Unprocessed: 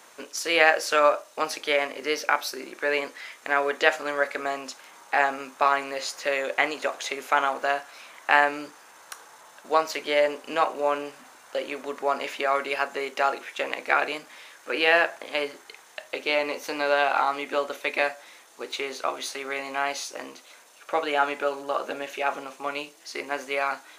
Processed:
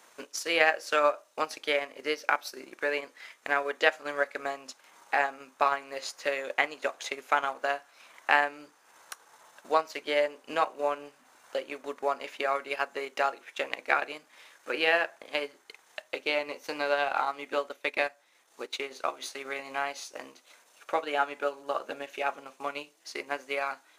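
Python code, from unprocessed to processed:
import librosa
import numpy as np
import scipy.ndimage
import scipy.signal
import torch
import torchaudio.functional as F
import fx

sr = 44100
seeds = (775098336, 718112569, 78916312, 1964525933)

y = fx.transient(x, sr, attack_db=4, sustain_db=fx.steps((0.0, -7.0), (17.68, -12.0), (18.91, -6.0)))
y = F.gain(torch.from_numpy(y), -6.0).numpy()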